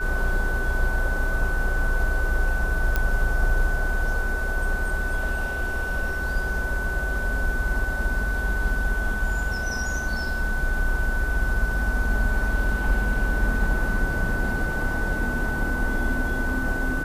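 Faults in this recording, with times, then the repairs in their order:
tone 1500 Hz -28 dBFS
2.96 pop -10 dBFS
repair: de-click; notch 1500 Hz, Q 30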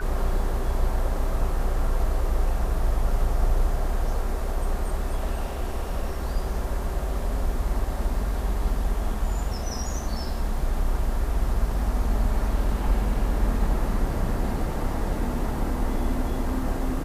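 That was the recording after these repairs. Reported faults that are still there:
none

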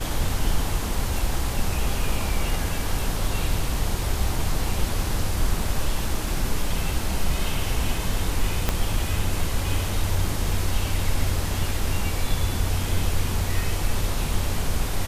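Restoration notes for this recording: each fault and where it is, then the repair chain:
8.69 pop -6 dBFS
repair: de-click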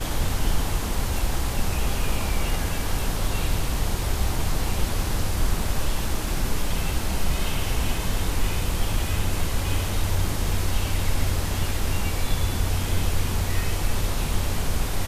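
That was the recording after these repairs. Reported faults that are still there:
8.69 pop

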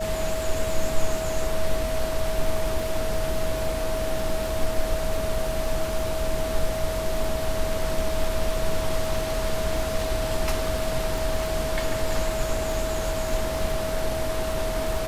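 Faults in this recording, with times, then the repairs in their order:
crackle 22/s -28 dBFS
tone 640 Hz -28 dBFS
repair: de-click; notch 640 Hz, Q 30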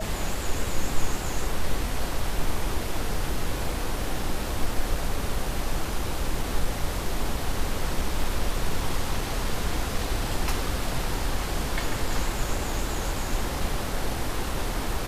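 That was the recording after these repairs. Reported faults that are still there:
none

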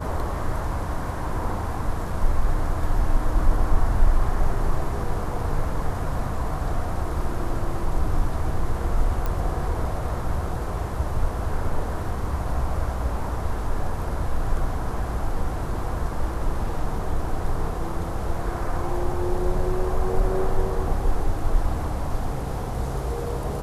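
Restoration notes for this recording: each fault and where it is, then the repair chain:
9.26 pop -14 dBFS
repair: de-click

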